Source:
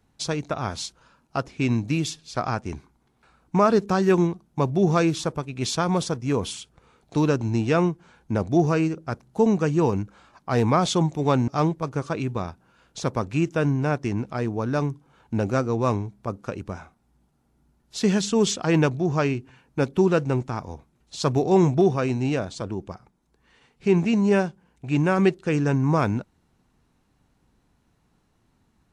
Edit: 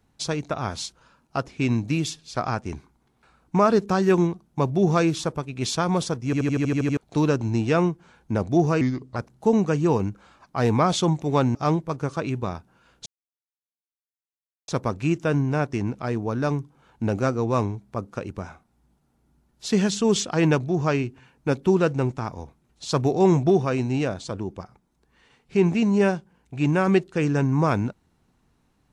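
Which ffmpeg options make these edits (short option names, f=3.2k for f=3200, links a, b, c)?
-filter_complex "[0:a]asplit=13[a][b][c][d][e][f][g][h][i][j][k][l][m];[a]atrim=end=6.332[n];[b]atrim=start=6.248:end=6.332[o];[c]atrim=start=6.248:end=6.332[p];[d]atrim=start=6.248:end=6.332[q];[e]atrim=start=6.248:end=6.332[r];[f]atrim=start=6.248:end=6.332[s];[g]atrim=start=6.248:end=6.332[t];[h]atrim=start=6.248:end=6.332[u];[i]atrim=start=6.248:end=6.332[v];[j]atrim=start=6.968:end=8.814[w];[k]atrim=start=8.81:end=9.09,asetpts=PTS-STARTPTS,asetrate=35280,aresample=44100[x];[l]atrim=start=9.086:end=12.99,asetpts=PTS-STARTPTS,afade=t=out:st=3.9:d=0.004:c=hsin,apad=pad_dur=1.62[y];[m]atrim=start=12.99,asetpts=PTS-STARTPTS,afade=t=in:d=0.004:c=hsin[z];[n][o]acrossfade=d=0.004:c1=hsin:c2=hsin[aa];[aa][p]acrossfade=d=0.004:c1=hsin:c2=hsin[ab];[ab][q]acrossfade=d=0.004:c1=hsin:c2=hsin[ac];[ac][r]acrossfade=d=0.004:c1=hsin:c2=hsin[ad];[ad][s]acrossfade=d=0.004:c1=hsin:c2=hsin[ae];[ae][t]acrossfade=d=0.004:c1=hsin:c2=hsin[af];[af][u]acrossfade=d=0.004:c1=hsin:c2=hsin[ag];[ag][v]acrossfade=d=0.004:c1=hsin:c2=hsin[ah];[ah][w]acrossfade=d=0.004:c1=hsin:c2=hsin[ai];[ai][x]acrossfade=d=0.004:c1=hsin:c2=hsin[aj];[y][z]concat=n=2:v=0:a=1[ak];[aj][ak]acrossfade=d=0.004:c1=hsin:c2=hsin"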